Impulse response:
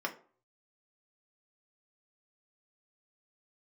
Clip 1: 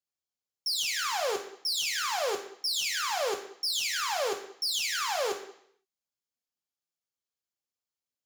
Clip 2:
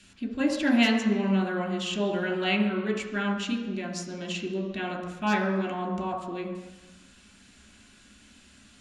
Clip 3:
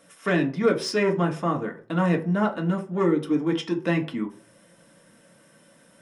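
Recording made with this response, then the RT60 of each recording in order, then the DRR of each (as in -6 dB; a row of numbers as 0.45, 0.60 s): 3; 0.65, 1.1, 0.45 s; 1.5, 0.5, 0.5 dB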